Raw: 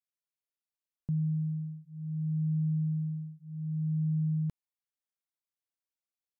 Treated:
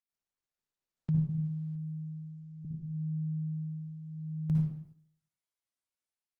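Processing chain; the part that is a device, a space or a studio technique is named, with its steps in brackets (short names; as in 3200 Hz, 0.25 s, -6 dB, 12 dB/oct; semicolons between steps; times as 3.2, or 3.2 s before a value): 1.29–2.65 low shelf 230 Hz -5 dB; speakerphone in a meeting room (reverb RT60 0.70 s, pre-delay 52 ms, DRR -2.5 dB; AGC gain up to 4 dB; gate -50 dBFS, range -6 dB; gain -2.5 dB; Opus 20 kbps 48000 Hz)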